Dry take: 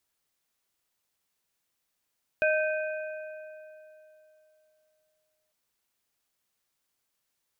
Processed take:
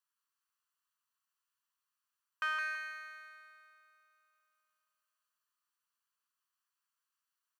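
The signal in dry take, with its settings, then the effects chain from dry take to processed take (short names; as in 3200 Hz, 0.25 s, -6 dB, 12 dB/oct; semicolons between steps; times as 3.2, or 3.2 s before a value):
metal hit plate, length 3.10 s, lowest mode 620 Hz, modes 3, decay 3.22 s, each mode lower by 3 dB, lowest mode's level -22.5 dB
minimum comb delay 0.67 ms; ladder high-pass 940 Hz, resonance 60%; on a send: feedback echo 0.165 s, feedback 29%, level -4 dB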